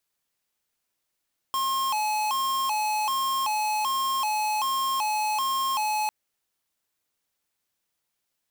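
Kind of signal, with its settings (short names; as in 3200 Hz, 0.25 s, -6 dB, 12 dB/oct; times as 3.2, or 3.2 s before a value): siren hi-lo 852–1070 Hz 1.3/s square -26 dBFS 4.55 s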